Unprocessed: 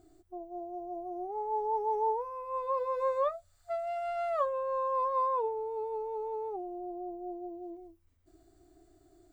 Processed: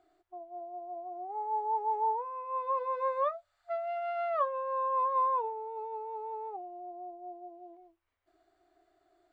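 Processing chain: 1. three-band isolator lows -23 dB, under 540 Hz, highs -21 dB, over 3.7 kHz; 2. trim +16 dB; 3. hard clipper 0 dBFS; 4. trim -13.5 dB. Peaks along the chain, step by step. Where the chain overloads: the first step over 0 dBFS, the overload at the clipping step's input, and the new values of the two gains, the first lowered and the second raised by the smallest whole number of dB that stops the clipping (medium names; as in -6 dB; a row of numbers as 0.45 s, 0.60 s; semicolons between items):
-21.5 dBFS, -5.5 dBFS, -5.5 dBFS, -19.0 dBFS; nothing clips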